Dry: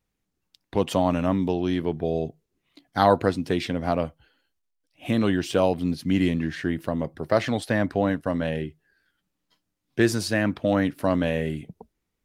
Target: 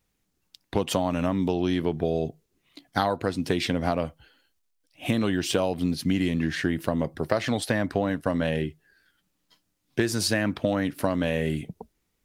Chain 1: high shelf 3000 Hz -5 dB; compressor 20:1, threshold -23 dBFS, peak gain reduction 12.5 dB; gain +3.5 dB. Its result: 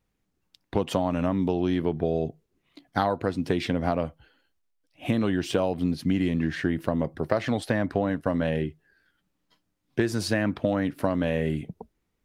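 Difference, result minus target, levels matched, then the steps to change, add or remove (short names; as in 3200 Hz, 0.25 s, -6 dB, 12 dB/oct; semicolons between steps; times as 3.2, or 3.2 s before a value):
8000 Hz band -7.5 dB
change: high shelf 3000 Hz +4.5 dB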